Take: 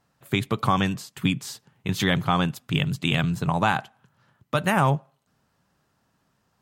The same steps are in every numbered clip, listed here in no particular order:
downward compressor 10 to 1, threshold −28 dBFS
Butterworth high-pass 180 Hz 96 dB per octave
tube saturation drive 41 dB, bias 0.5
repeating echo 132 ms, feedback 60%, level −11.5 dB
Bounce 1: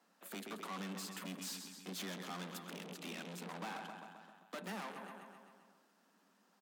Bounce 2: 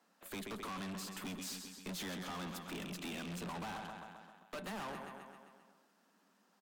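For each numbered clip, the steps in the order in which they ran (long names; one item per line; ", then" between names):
downward compressor, then repeating echo, then tube saturation, then Butterworth high-pass
Butterworth high-pass, then downward compressor, then repeating echo, then tube saturation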